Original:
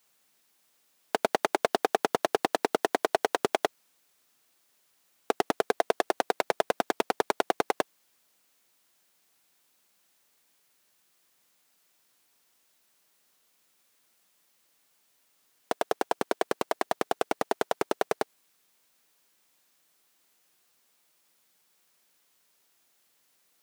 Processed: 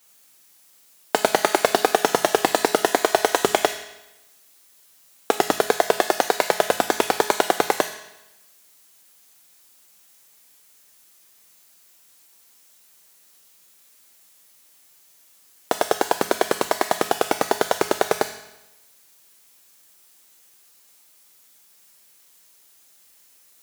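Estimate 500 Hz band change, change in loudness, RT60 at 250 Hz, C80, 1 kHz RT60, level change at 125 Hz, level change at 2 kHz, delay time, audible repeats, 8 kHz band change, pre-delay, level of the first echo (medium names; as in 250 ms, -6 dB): +7.5 dB, +8.5 dB, 1.0 s, 11.0 dB, 1.0 s, +9.0 dB, +9.0 dB, no echo, no echo, +14.0 dB, 5 ms, no echo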